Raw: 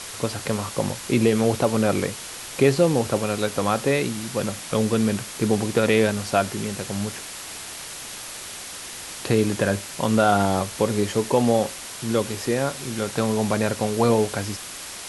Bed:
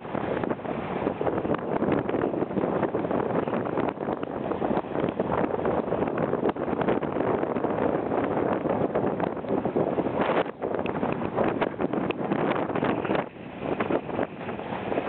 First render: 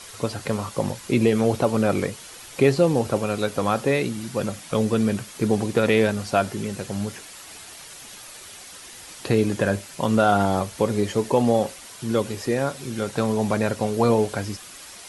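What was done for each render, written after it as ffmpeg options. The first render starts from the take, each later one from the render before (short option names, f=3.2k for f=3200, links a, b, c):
-af "afftdn=nr=8:nf=-36"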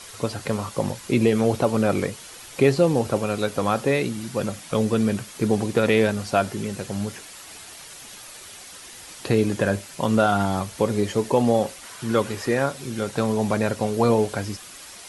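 -filter_complex "[0:a]asettb=1/sr,asplit=3[a][b][c];[a]atrim=end=10.264[d];[b]atrim=start=10.26:end=10.69,asetpts=PTS-STARTPTS,afade=t=in:d=0.004:c=qsin,afade=t=out:st=0.426:d=0.004:c=qsin,equalizer=f=500:w=1.5:g=-7.5[e];[c]atrim=start=10.686[f];[d][e]acrossfade=d=0.004:c1=hsin:c2=qsin[g];[g][f]acrossfade=d=0.004:c1=qsin:c2=hsin,asettb=1/sr,asplit=3[h][i][j];[h]atrim=end=11.834[k];[i]atrim=start=11.83:end=12.66,asetpts=PTS-STARTPTS,afade=t=in:d=0.004:c=qsin,afade=t=out:st=0.826:d=0.004:c=qsin,equalizer=f=1.4k:t=o:w=1.5:g=6.5[l];[j]atrim=start=12.656[m];[k][l]acrossfade=d=0.004:c1=hsin:c2=qsin[n];[n][m]acrossfade=d=0.004:c1=qsin:c2=hsin"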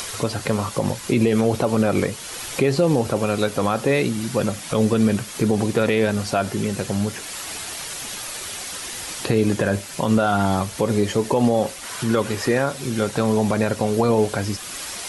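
-filter_complex "[0:a]asplit=2[a][b];[b]acompressor=mode=upward:threshold=-21dB:ratio=2.5,volume=-3dB[c];[a][c]amix=inputs=2:normalize=0,alimiter=limit=-8dB:level=0:latency=1:release=68"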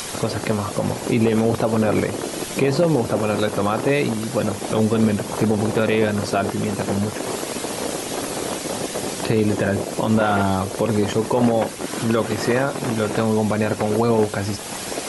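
-filter_complex "[1:a]volume=-2dB[a];[0:a][a]amix=inputs=2:normalize=0"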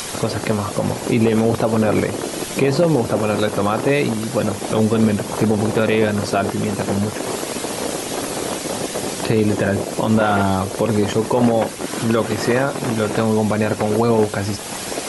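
-af "volume=2dB"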